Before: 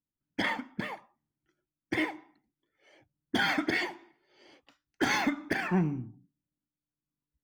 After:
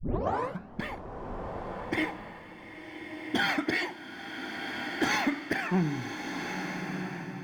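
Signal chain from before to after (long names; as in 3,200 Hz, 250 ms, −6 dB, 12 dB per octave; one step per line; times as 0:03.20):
turntable start at the beginning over 0.80 s
slow-attack reverb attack 1,440 ms, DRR 4.5 dB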